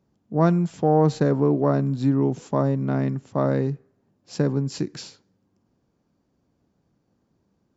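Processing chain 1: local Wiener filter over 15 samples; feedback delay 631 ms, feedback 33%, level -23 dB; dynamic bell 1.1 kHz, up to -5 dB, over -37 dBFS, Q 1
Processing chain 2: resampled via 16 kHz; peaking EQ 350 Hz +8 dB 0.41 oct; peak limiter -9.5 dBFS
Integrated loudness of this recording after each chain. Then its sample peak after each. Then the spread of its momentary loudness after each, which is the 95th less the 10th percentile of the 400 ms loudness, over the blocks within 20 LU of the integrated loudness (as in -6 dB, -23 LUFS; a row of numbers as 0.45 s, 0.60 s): -23.5 LUFS, -22.0 LUFS; -9.0 dBFS, -9.5 dBFS; 9 LU, 9 LU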